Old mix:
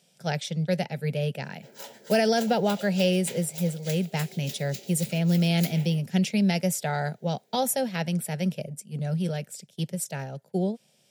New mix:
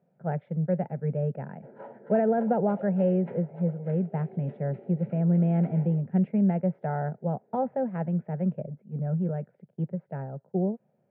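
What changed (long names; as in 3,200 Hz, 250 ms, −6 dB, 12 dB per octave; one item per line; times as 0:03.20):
background +4.5 dB
master: add Bessel low-pass filter 960 Hz, order 6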